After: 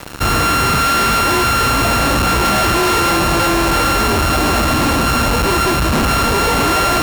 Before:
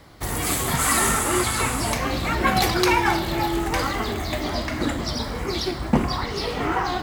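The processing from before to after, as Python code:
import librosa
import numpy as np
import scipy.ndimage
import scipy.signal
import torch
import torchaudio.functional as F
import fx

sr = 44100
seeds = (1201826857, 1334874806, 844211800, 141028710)

y = np.r_[np.sort(x[:len(x) // 32 * 32].reshape(-1, 32), axis=1).ravel(), x[len(x) // 32 * 32:]]
y = fx.fuzz(y, sr, gain_db=42.0, gate_db=-45.0)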